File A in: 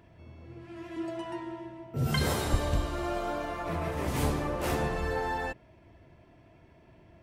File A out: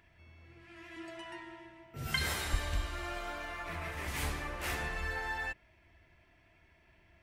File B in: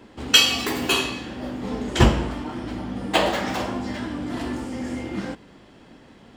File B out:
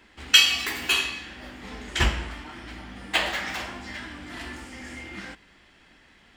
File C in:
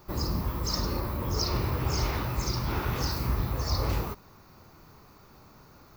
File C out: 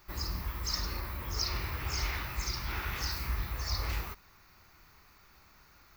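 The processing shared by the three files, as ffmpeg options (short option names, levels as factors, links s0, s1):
-af "equalizer=f=125:t=o:w=1:g=-10,equalizer=f=250:t=o:w=1:g=-8,equalizer=f=500:t=o:w=1:g=-9,equalizer=f=1000:t=o:w=1:g=-4,equalizer=f=2000:t=o:w=1:g=6,volume=0.75"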